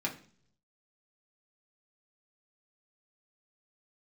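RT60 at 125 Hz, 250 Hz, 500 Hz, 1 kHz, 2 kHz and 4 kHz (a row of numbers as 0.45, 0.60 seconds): 1.0, 0.70, 0.55, 0.45, 0.45, 0.50 seconds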